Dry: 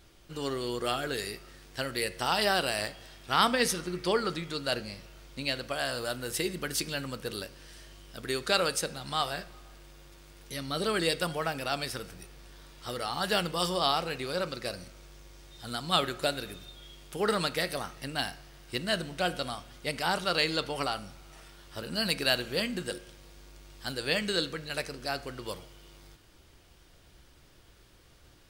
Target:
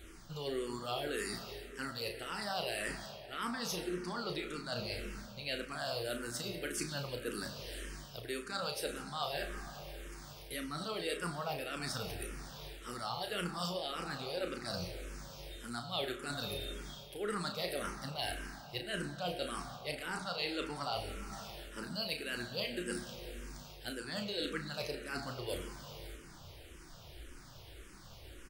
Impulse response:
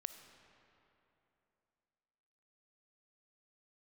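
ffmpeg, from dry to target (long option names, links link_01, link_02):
-filter_complex "[0:a]areverse,acompressor=threshold=-41dB:ratio=6,areverse,asplit=2[link_01][link_02];[link_02]adelay=34,volume=-7dB[link_03];[link_01][link_03]amix=inputs=2:normalize=0[link_04];[1:a]atrim=start_sample=2205[link_05];[link_04][link_05]afir=irnorm=-1:irlink=0,asplit=2[link_06][link_07];[link_07]afreqshift=-1.8[link_08];[link_06][link_08]amix=inputs=2:normalize=1,volume=10.5dB"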